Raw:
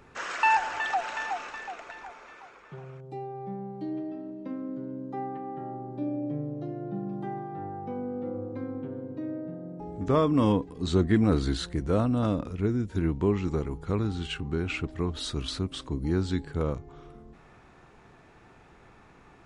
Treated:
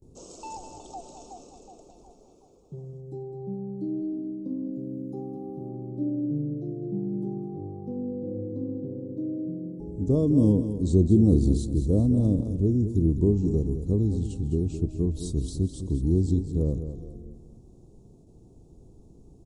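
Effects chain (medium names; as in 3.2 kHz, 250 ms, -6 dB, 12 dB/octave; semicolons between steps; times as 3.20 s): 4.73–5.69 s: treble shelf 4.8 kHz +8.5 dB; on a send: feedback delay 208 ms, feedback 40%, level -10 dB; on the sum: gate with hold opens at -46 dBFS; Chebyshev band-stop 360–7900 Hz, order 2; bass shelf 100 Hz +8 dB; trim +2.5 dB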